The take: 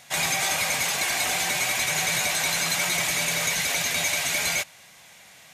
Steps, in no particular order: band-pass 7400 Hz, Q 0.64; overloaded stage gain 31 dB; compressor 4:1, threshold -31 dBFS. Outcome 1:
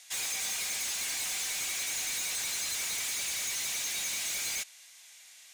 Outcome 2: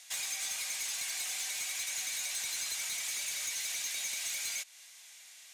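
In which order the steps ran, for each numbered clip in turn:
band-pass > overloaded stage > compressor; compressor > band-pass > overloaded stage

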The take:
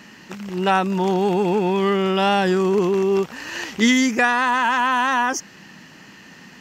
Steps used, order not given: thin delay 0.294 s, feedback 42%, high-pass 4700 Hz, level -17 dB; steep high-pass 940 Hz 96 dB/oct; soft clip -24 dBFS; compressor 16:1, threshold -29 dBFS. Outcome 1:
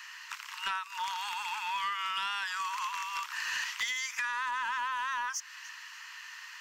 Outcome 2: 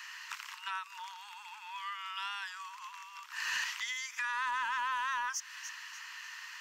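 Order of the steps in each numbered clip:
steep high-pass > compressor > thin delay > soft clip; thin delay > compressor > steep high-pass > soft clip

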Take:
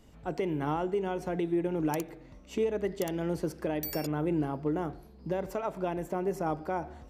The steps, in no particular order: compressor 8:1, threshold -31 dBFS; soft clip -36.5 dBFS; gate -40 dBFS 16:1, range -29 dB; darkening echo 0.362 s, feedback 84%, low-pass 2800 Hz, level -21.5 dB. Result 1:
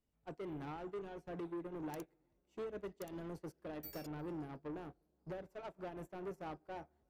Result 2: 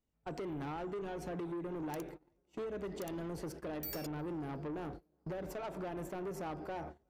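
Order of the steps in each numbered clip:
compressor > darkening echo > soft clip > gate; darkening echo > gate > compressor > soft clip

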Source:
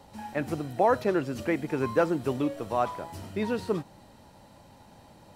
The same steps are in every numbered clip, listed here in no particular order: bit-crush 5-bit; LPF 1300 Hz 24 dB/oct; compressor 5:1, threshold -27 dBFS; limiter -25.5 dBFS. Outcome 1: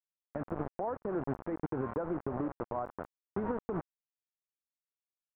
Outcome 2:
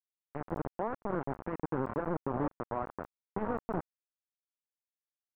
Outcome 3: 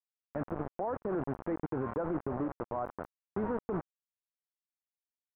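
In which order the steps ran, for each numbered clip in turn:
bit-crush > compressor > limiter > LPF; limiter > compressor > bit-crush > LPF; bit-crush > LPF > limiter > compressor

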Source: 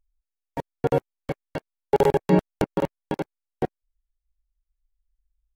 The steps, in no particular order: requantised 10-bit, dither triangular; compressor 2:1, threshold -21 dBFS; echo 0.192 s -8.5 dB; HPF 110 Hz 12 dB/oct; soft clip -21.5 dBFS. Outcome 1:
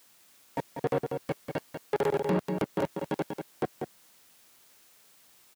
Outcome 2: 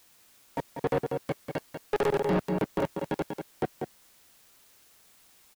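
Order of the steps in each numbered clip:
requantised > compressor > echo > soft clip > HPF; HPF > requantised > echo > soft clip > compressor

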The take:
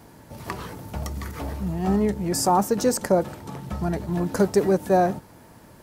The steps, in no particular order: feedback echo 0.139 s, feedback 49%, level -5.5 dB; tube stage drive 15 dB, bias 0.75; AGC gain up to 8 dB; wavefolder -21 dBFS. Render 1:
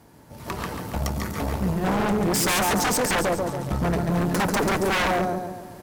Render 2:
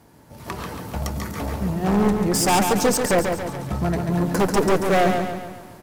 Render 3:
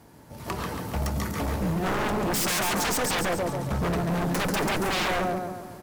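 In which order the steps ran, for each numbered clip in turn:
feedback echo > wavefolder > AGC > tube stage; tube stage > wavefolder > AGC > feedback echo; tube stage > AGC > feedback echo > wavefolder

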